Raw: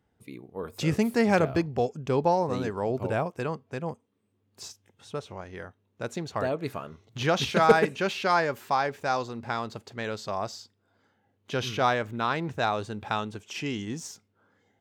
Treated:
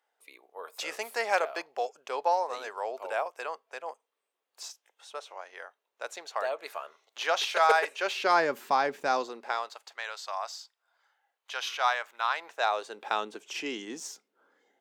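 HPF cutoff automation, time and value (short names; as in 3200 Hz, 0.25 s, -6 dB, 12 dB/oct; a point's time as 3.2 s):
HPF 24 dB/oct
7.94 s 590 Hz
8.47 s 210 Hz
9.06 s 210 Hz
9.81 s 760 Hz
12.3 s 760 Hz
13.24 s 310 Hz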